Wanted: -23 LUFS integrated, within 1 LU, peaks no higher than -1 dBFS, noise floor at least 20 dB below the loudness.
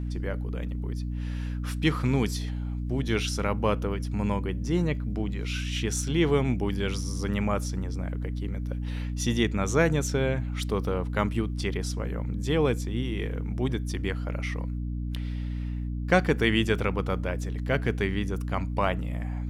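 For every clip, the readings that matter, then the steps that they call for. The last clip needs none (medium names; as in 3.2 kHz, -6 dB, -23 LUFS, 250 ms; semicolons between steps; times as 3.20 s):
hum 60 Hz; highest harmonic 300 Hz; hum level -29 dBFS; loudness -28.5 LUFS; peak level -6.5 dBFS; loudness target -23.0 LUFS
-> de-hum 60 Hz, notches 5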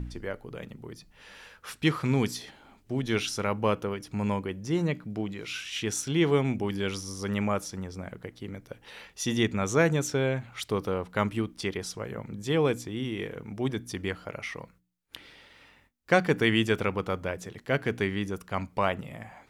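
hum not found; loudness -29.5 LUFS; peak level -6.5 dBFS; loudness target -23.0 LUFS
-> trim +6.5 dB; peak limiter -1 dBFS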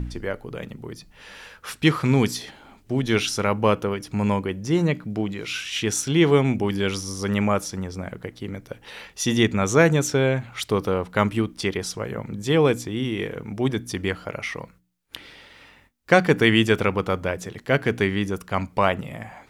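loudness -23.0 LUFS; peak level -1.0 dBFS; noise floor -55 dBFS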